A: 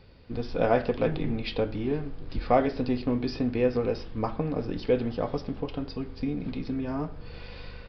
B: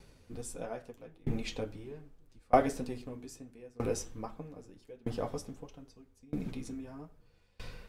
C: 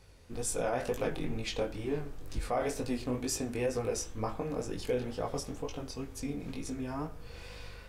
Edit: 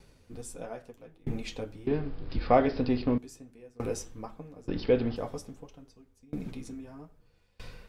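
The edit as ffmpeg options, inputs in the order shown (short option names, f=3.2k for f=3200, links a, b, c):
-filter_complex "[0:a]asplit=2[a][b];[1:a]asplit=3[c][d][e];[c]atrim=end=1.872[f];[a]atrim=start=1.868:end=3.182[g];[d]atrim=start=3.178:end=4.682[h];[b]atrim=start=4.678:end=5.162[i];[e]atrim=start=5.158[j];[f][g]acrossfade=d=0.004:c1=hsin:c2=hsin[k];[k][h]acrossfade=d=0.004:c1=hsin:c2=hsin[l];[l][i]acrossfade=d=0.004:c1=hsin:c2=hsin[m];[m][j]acrossfade=d=0.004:c1=hsin:c2=hsin"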